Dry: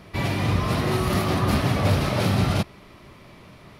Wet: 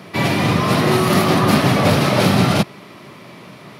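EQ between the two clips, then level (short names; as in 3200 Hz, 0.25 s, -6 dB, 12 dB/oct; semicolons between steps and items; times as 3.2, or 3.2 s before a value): HPF 130 Hz 24 dB/oct; +9.0 dB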